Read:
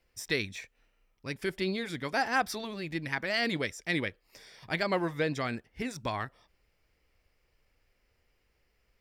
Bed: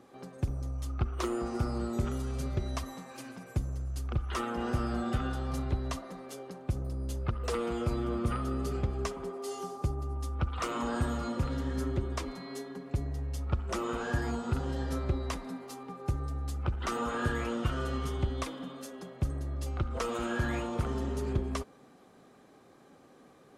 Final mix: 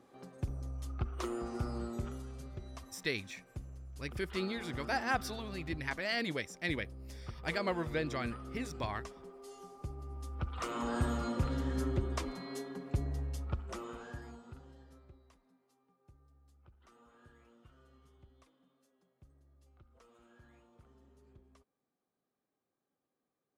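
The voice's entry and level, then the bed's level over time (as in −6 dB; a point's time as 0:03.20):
2.75 s, −5.0 dB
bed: 0:01.82 −5.5 dB
0:02.45 −13 dB
0:09.63 −13 dB
0:11.06 −1.5 dB
0:13.19 −1.5 dB
0:15.30 −30.5 dB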